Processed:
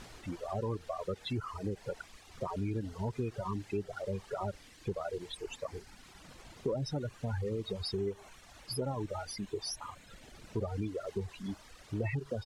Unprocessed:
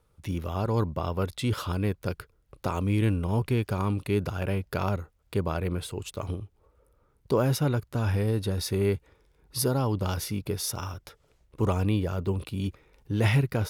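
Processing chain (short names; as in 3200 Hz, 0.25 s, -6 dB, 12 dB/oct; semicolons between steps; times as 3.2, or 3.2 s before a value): echo 0.116 s -17 dB; loudest bins only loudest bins 16; spectral noise reduction 14 dB; high shelf 3200 Hz +10.5 dB; added noise pink -45 dBFS; dynamic EQ 660 Hz, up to +5 dB, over -43 dBFS, Q 0.83; reverb removal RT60 1.3 s; compressor 3:1, threshold -29 dBFS, peak gain reduction 9 dB; tempo 1.1×; LPF 8200 Hz 12 dB/oct; gain -4 dB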